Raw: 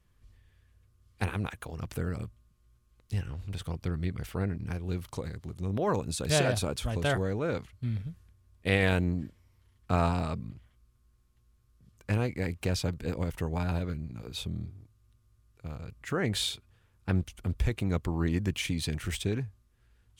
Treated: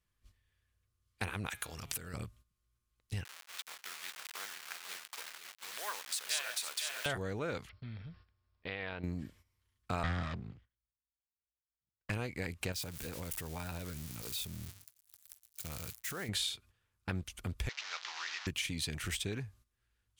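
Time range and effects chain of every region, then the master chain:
1.49–2.14 de-hum 138.8 Hz, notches 32 + compressor, threshold -39 dBFS + high shelf 2300 Hz +11.5 dB
3.24–7.06 level-crossing sampler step -36 dBFS + HPF 1400 Hz + echo 0.498 s -8 dB
7.69–9.04 bell 860 Hz +6.5 dB 2.3 oct + compressor 3:1, threshold -41 dBFS + brick-wall FIR low-pass 5600 Hz
10.03–12.1 minimum comb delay 0.59 ms + air absorption 140 m + three-band expander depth 100%
12.72–16.29 switching spikes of -31 dBFS + expander -41 dBFS + compressor 4:1, threshold -36 dBFS
17.69–18.47 delta modulation 32 kbps, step -33.5 dBFS + Bessel high-pass 1300 Hz, order 4
whole clip: gate -54 dBFS, range -12 dB; tilt shelf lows -4.5 dB, about 850 Hz; compressor 2.5:1, threshold -36 dBFS

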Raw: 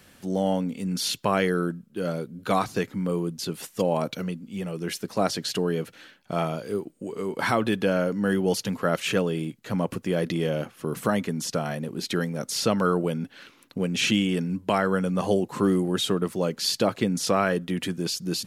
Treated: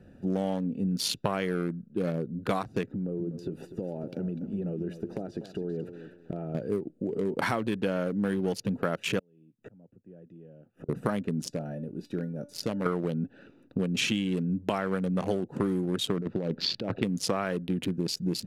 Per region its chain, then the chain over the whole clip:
2.92–6.55 bell 360 Hz +6 dB 0.42 oct + compressor 10:1, threshold -32 dBFS + lo-fi delay 0.247 s, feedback 35%, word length 9-bit, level -11 dB
9.19–10.89 Butterworth band-stop 4300 Hz, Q 3.3 + flipped gate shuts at -31 dBFS, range -34 dB + three-band squash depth 70%
11.48–12.86 high shelf 5900 Hz +9 dB + resonator 290 Hz, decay 0.28 s, mix 70%
16.17–17.03 LPF 4200 Hz 24 dB/oct + negative-ratio compressor -29 dBFS
whole clip: Wiener smoothing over 41 samples; compressor, threshold -31 dBFS; gain +5.5 dB

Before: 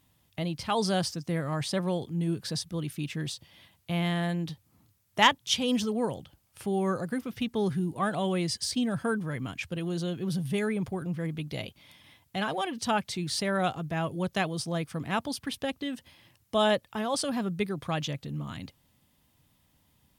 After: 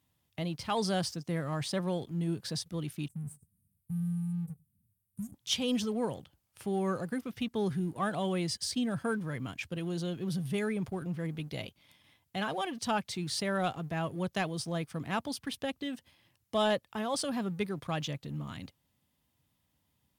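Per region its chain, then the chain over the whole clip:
3.08–5.34 Chebyshev band-stop 210–8700 Hz, order 4 + echo 98 ms -18.5 dB
whole clip: HPF 44 Hz 24 dB/oct; sample leveller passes 1; gain -7 dB

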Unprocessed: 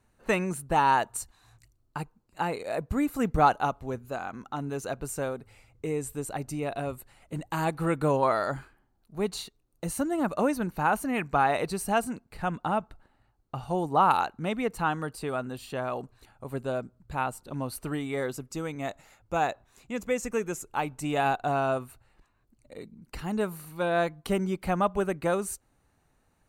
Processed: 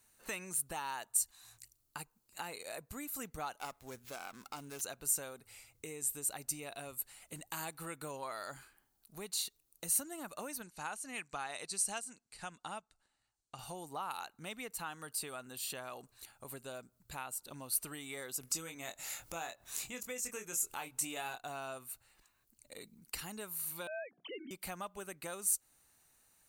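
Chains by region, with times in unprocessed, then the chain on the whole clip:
3.58–4.81 high shelf 6100 Hz +6.5 dB + running maximum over 5 samples
10.62–13.59 LPF 8200 Hz 24 dB/oct + high shelf 5100 Hz +11.5 dB + upward expander, over -42 dBFS
18.41–21.39 upward compressor, threshold -35 dBFS + doubler 24 ms -6 dB
23.87–24.51 sine-wave speech + notches 60/120/180/240/300/360 Hz
whole clip: low shelf 160 Hz -4 dB; compressor 2.5:1, threshold -40 dBFS; pre-emphasis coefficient 0.9; gain +10.5 dB

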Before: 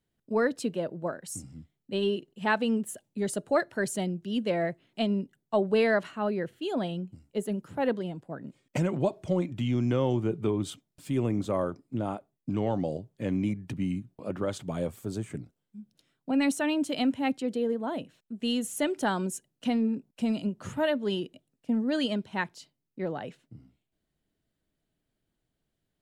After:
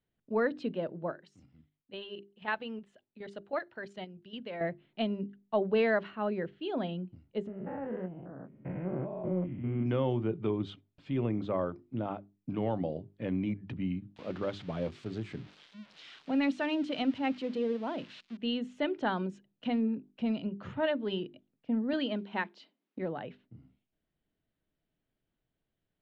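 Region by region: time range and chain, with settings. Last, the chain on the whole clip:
1.12–4.61 low shelf 480 Hz -9.5 dB + level quantiser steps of 9 dB
7.47–9.86 stepped spectrum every 0.2 s + LPF 2000 Hz 24 dB/oct + doubler 22 ms -9.5 dB
14.16–18.37 switching spikes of -29 dBFS + high shelf 9500 Hz -2.5 dB
21.93–22.99 block floating point 7-bit + brick-wall FIR high-pass 180 Hz + three-band squash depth 70%
whole clip: LPF 3700 Hz 24 dB/oct; notches 50/100/150/200/250/300/350/400 Hz; gain -3 dB

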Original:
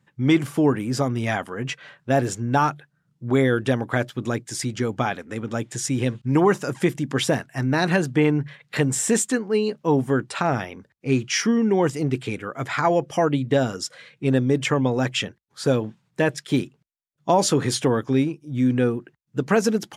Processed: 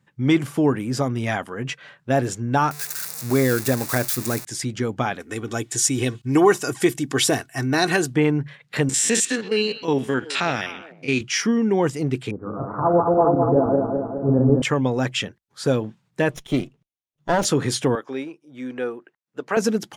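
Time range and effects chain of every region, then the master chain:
2.71–4.45 switching spikes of -15 dBFS + bell 3100 Hz -14 dB 0.26 oct + mismatched tape noise reduction decoder only
5.2–8.14 high shelf 4100 Hz +10.5 dB + comb 2.7 ms, depth 51%
8.89–11.21 stepped spectrum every 50 ms + weighting filter D + delay with a stepping band-pass 0.125 s, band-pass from 3100 Hz, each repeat -1.4 oct, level -10 dB
12.31–14.62 regenerating reverse delay 0.104 s, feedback 76%, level -2 dB + steep low-pass 1200 Hz 48 dB/oct
16.31–17.45 minimum comb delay 0.32 ms + high shelf 5100 Hz -5.5 dB
17.95–19.57 HPF 490 Hz + high shelf 3500 Hz -10 dB
whole clip: dry

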